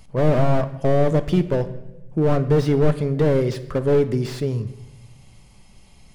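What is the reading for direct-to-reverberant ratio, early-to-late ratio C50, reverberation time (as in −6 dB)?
10.5 dB, 14.0 dB, 1.0 s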